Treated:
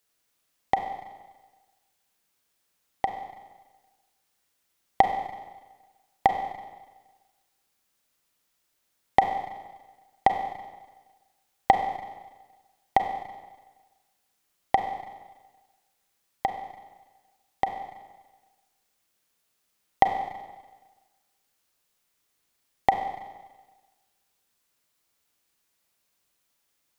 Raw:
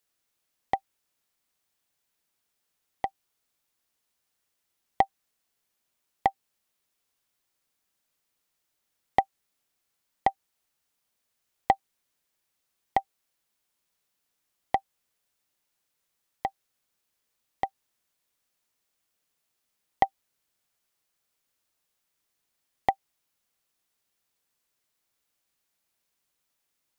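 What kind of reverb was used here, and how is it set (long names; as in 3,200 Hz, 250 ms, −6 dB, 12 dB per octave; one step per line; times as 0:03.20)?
four-comb reverb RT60 1.3 s, combs from 32 ms, DRR 5 dB
level +3.5 dB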